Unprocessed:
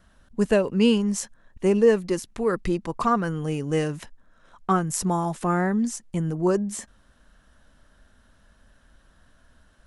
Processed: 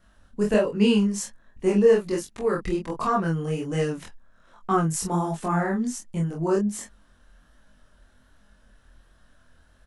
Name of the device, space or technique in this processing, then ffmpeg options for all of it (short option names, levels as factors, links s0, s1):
double-tracked vocal: -filter_complex "[0:a]asplit=2[s0][s1];[s1]adelay=24,volume=0.794[s2];[s0][s2]amix=inputs=2:normalize=0,flanger=delay=19:depth=7.5:speed=1.3"